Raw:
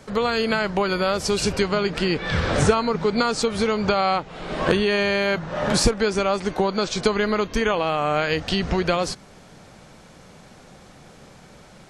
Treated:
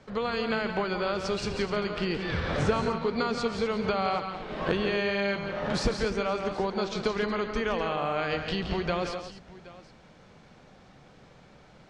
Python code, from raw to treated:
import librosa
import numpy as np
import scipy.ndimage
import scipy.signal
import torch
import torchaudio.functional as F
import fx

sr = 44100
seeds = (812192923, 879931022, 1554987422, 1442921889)

p1 = scipy.signal.sosfilt(scipy.signal.butter(2, 4600.0, 'lowpass', fs=sr, output='sos'), x)
p2 = p1 + fx.echo_multitap(p1, sr, ms=(139, 170, 250, 772), db=(-12.0, -8.0, -12.5, -19.5), dry=0)
y = p2 * librosa.db_to_amplitude(-8.0)